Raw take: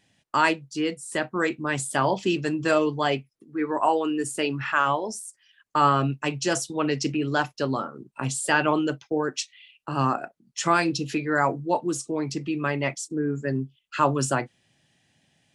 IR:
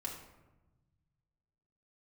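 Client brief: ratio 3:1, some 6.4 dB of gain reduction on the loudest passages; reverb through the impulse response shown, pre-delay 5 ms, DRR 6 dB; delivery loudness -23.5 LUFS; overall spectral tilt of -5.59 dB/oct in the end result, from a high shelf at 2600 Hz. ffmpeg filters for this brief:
-filter_complex "[0:a]highshelf=f=2.6k:g=-8.5,acompressor=threshold=-25dB:ratio=3,asplit=2[a][b];[1:a]atrim=start_sample=2205,adelay=5[c];[b][c]afir=irnorm=-1:irlink=0,volume=-5.5dB[d];[a][d]amix=inputs=2:normalize=0,volume=6.5dB"

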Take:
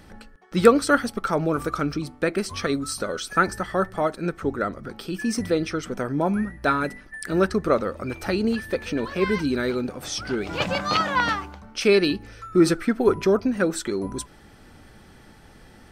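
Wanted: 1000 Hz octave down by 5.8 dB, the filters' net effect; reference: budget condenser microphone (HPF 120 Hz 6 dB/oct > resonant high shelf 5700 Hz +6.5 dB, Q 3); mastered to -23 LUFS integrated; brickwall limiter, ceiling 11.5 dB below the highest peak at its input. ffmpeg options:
-af "equalizer=f=1k:t=o:g=-8,alimiter=limit=-15dB:level=0:latency=1,highpass=f=120:p=1,highshelf=f=5.7k:t=q:w=3:g=6.5,volume=4dB"

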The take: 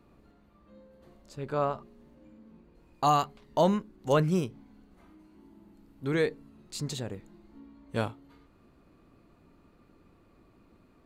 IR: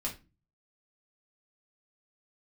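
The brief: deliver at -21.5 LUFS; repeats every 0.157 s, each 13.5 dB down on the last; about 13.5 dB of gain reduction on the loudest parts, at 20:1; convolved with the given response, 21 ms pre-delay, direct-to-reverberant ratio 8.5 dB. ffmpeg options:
-filter_complex "[0:a]acompressor=threshold=-32dB:ratio=20,aecho=1:1:157|314:0.211|0.0444,asplit=2[a][b];[1:a]atrim=start_sample=2205,adelay=21[c];[b][c]afir=irnorm=-1:irlink=0,volume=-10.5dB[d];[a][d]amix=inputs=2:normalize=0,volume=17.5dB"

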